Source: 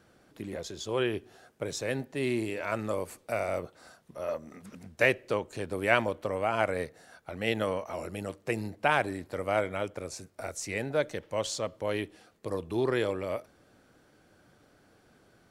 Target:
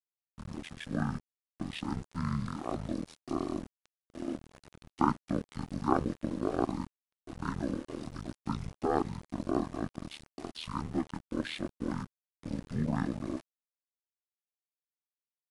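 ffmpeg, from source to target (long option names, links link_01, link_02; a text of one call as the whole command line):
ffmpeg -i in.wav -af "aeval=exprs='val(0)*sin(2*PI*77*n/s)':channel_layout=same,aeval=exprs='val(0)*gte(abs(val(0)),0.00668)':channel_layout=same,asetrate=22050,aresample=44100,atempo=2" out.wav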